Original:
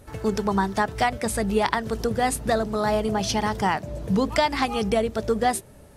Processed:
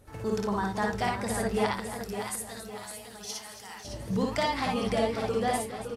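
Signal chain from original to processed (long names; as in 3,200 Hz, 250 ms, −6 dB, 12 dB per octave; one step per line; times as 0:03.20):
0:01.73–0:03.85: first-order pre-emphasis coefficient 0.97
double-tracking delay 25 ms −12.5 dB
on a send: multi-tap delay 54/63/111/278 ms −3.5/−4/−19/−12.5 dB
on the sum: feedback echo with a swinging delay time 559 ms, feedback 46%, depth 97 cents, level −8 dB
level −8.5 dB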